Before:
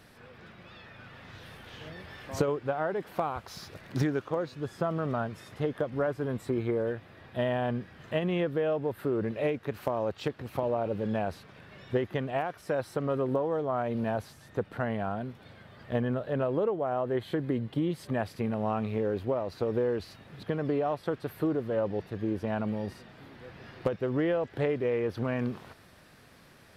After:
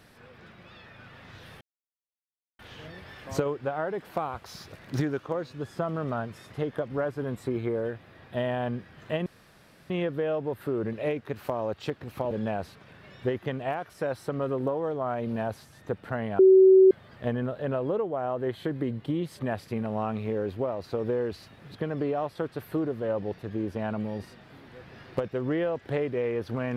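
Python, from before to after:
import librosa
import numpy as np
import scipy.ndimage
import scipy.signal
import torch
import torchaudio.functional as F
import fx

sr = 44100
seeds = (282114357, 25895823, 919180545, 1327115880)

y = fx.edit(x, sr, fx.insert_silence(at_s=1.61, length_s=0.98),
    fx.insert_room_tone(at_s=8.28, length_s=0.64),
    fx.cut(start_s=10.69, length_s=0.3),
    fx.bleep(start_s=15.07, length_s=0.52, hz=379.0, db=-12.0), tone=tone)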